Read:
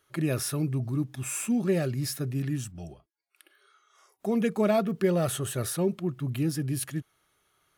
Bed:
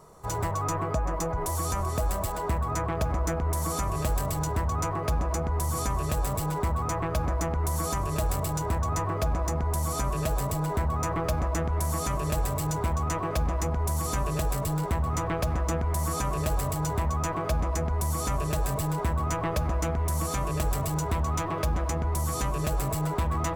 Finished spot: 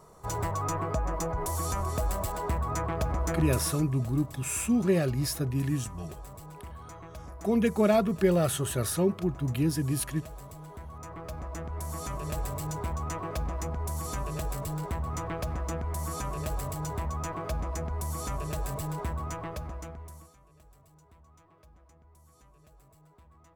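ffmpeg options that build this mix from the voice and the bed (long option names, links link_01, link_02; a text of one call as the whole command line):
ffmpeg -i stem1.wav -i stem2.wav -filter_complex "[0:a]adelay=3200,volume=1dB[link_01];[1:a]volume=9dB,afade=type=out:start_time=3.49:duration=0.36:silence=0.188365,afade=type=in:start_time=10.9:duration=1.49:silence=0.281838,afade=type=out:start_time=19.03:duration=1.31:silence=0.0530884[link_02];[link_01][link_02]amix=inputs=2:normalize=0" out.wav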